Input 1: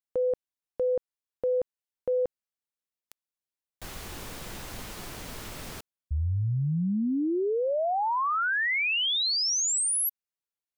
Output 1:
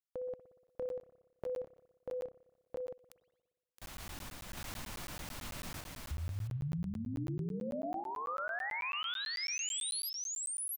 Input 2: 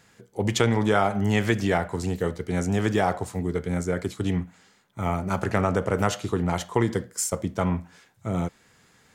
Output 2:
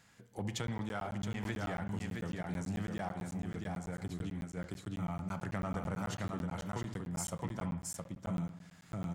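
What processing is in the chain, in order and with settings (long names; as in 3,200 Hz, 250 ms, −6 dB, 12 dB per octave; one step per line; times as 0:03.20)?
in parallel at −5 dB: hard clipping −18.5 dBFS
on the sum: dynamic equaliser 160 Hz, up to +7 dB, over −38 dBFS, Q 2.6
on a send: single-tap delay 668 ms −4 dB
on the sum: sample-and-hold tremolo, depth 55%
parametric band 420 Hz −8.5 dB 0.52 octaves
downward compressor 2.5 to 1, threshold −36 dBFS
spring reverb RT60 1.2 s, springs 59 ms, chirp 80 ms, DRR 11.5 dB
regular buffer underruns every 0.11 s, samples 512, zero, from 0:00.67
level −5 dB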